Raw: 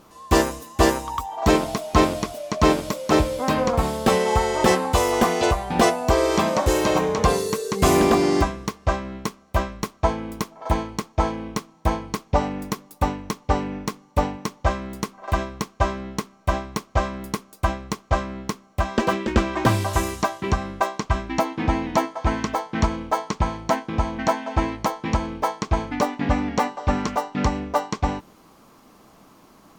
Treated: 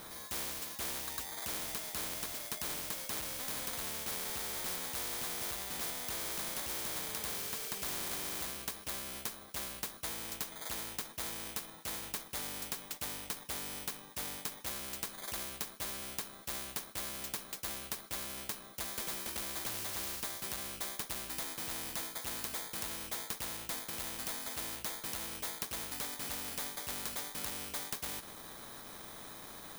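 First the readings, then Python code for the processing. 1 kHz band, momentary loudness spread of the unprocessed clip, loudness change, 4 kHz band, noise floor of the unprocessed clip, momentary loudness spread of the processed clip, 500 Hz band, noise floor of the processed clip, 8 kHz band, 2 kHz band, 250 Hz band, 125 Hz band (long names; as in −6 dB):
−23.5 dB, 10 LU, −14.5 dB, −8.5 dB, −53 dBFS, 4 LU, −26.0 dB, −51 dBFS, −5.0 dB, −14.5 dB, −26.0 dB, −27.0 dB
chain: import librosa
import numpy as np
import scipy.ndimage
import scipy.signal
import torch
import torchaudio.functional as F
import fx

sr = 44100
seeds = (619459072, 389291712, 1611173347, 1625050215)

y = fx.bit_reversed(x, sr, seeds[0], block=16)
y = 10.0 ** (-20.5 / 20.0) * np.tanh(y / 10.0 ** (-20.5 / 20.0))
y = fx.spectral_comp(y, sr, ratio=4.0)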